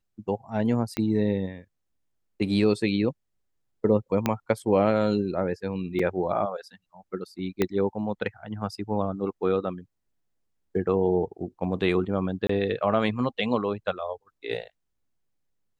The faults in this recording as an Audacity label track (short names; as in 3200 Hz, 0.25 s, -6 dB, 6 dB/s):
0.970000	0.970000	pop -14 dBFS
4.260000	4.260000	pop -9 dBFS
5.990000	5.990000	gap 4.2 ms
7.620000	7.620000	pop -10 dBFS
12.470000	12.490000	gap 24 ms